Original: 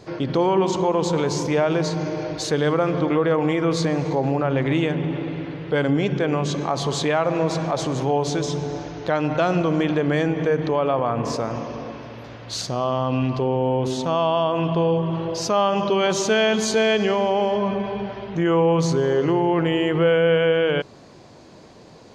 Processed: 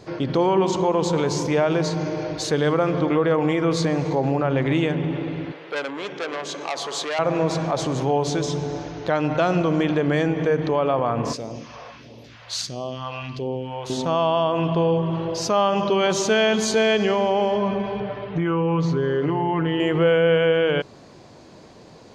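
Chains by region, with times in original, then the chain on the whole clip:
5.52–7.19 HPF 480 Hz + core saturation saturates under 2500 Hz
11.33–13.9 low shelf 270 Hz -8.5 dB + phaser stages 2, 1.5 Hz, lowest notch 250–1500 Hz
18–19.8 LPF 3300 Hz + comb 6.8 ms, depth 71% + compressor 3:1, threshold -19 dBFS
whole clip: dry

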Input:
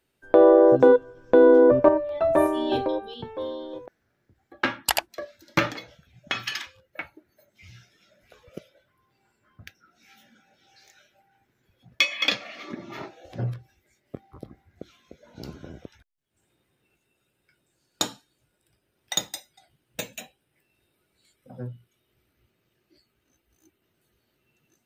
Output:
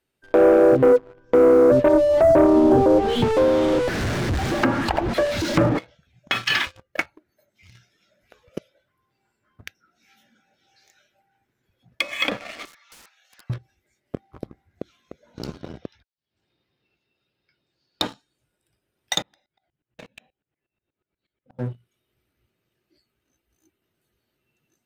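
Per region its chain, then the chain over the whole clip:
1.93–5.79 zero-crossing step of -28 dBFS + low shelf 470 Hz +6 dB
6.5–7 low shelf 190 Hz +7 dB + de-hum 397.3 Hz, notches 4 + sample leveller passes 2
12.65–13.5 HPF 1300 Hz 24 dB/oct + wrapped overs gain 41.5 dB + three-band squash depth 40%
15.54–18.03 HPF 42 Hz + resonant high shelf 6200 Hz -10 dB, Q 3 + notch 1500 Hz, Q 21
19.22–21.59 air absorption 310 m + dB-ramp tremolo swelling 8.3 Hz, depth 21 dB
whole clip: treble ducked by the level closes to 820 Hz, closed at -18 dBFS; sample leveller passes 2; limiter -9 dBFS

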